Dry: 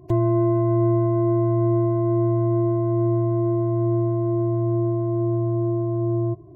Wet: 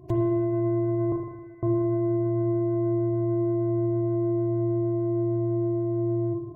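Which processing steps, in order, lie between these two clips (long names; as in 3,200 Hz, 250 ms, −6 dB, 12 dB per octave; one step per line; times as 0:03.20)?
brickwall limiter −15 dBFS, peak gain reduction 4 dB
0:01.12–0:01.63: four-pole ladder high-pass 1,200 Hz, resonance 35%
spring reverb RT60 1.2 s, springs 38/53 ms, chirp 65 ms, DRR 2.5 dB
level −2 dB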